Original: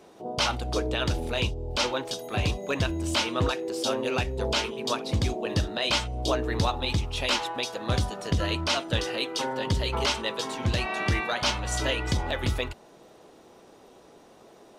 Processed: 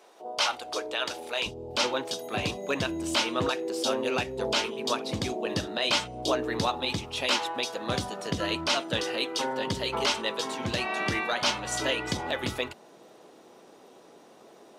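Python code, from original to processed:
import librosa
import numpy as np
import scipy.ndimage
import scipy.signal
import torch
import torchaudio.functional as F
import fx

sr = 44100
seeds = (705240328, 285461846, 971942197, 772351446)

y = fx.highpass(x, sr, hz=fx.steps((0.0, 560.0), (1.46, 170.0)), slope=12)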